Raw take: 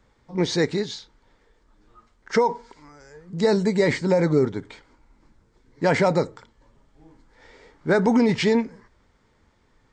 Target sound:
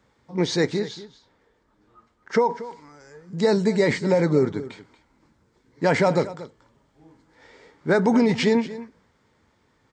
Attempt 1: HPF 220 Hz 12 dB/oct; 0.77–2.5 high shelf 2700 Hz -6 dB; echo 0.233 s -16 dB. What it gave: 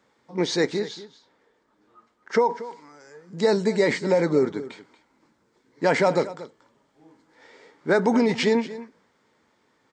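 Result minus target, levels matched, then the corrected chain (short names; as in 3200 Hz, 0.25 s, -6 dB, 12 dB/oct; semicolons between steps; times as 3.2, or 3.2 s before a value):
125 Hz band -4.5 dB
HPF 83 Hz 12 dB/oct; 0.77–2.5 high shelf 2700 Hz -6 dB; echo 0.233 s -16 dB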